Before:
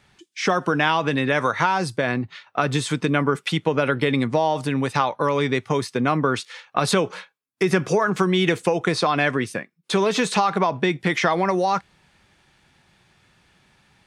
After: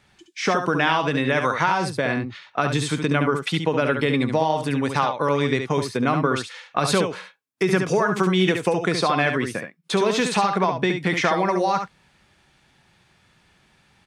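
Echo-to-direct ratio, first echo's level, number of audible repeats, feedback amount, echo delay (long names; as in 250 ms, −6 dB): −6.5 dB, −6.5 dB, 1, repeats not evenly spaced, 70 ms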